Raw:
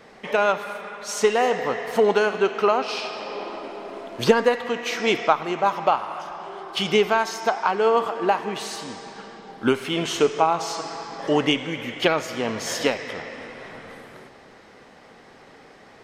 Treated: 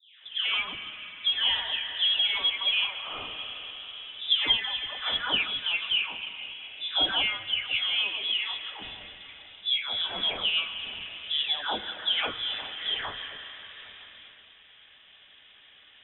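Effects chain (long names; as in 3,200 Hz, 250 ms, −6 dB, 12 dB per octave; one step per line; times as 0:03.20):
every frequency bin delayed by itself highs late, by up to 566 ms
echo through a band-pass that steps 160 ms, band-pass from 330 Hz, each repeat 0.7 octaves, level −10 dB
voice inversion scrambler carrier 3,700 Hz
level −5 dB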